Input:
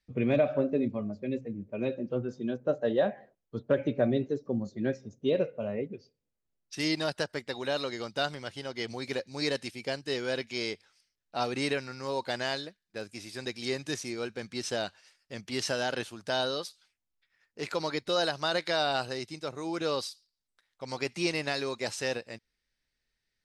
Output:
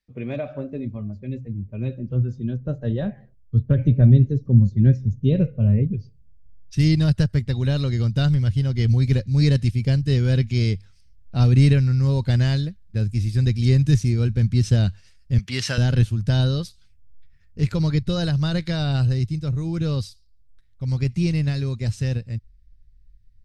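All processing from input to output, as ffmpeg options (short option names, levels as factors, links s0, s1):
-filter_complex "[0:a]asettb=1/sr,asplit=3[s0][s1][s2];[s0]atrim=end=15.384[s3];[s1]atrim=start=15.38:end=15.78,asetpts=PTS-STARTPTS,afade=t=in:d=0.004:c=qsin,afade=t=out:st=0.396:d=0.004:c=qsin,highpass=f=660:p=1,equalizer=f=1800:w=0.42:g=8.5[s4];[s2]atrim=start=15.776[s5];[s3][s4]acrossfade=d=0.004:c1=hsin:c2=qsin[s6];[s6][s5]acrossfade=d=0.004:c1=qsin:c2=hsin,asubboost=boost=11:cutoff=94,dynaudnorm=f=870:g=13:m=1.78,asubboost=boost=10.5:cutoff=240,volume=0.708"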